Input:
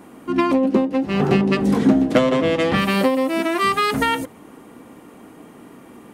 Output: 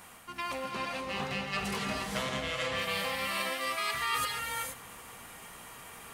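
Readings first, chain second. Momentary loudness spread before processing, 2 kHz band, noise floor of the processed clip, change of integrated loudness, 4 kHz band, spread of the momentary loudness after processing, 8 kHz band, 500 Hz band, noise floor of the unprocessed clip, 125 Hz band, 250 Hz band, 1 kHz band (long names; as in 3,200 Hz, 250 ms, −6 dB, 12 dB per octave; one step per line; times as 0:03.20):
5 LU, −8.0 dB, −49 dBFS, −14.5 dB, −5.5 dB, 15 LU, −1.0 dB, −18.5 dB, −45 dBFS, −18.0 dB, −24.5 dB, −11.5 dB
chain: guitar amp tone stack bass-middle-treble 10-0-10
reversed playback
downward compressor 6 to 1, threshold −39 dBFS, peak gain reduction 16 dB
reversed playback
reverb whose tail is shaped and stops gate 500 ms rising, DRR −1 dB
level +5 dB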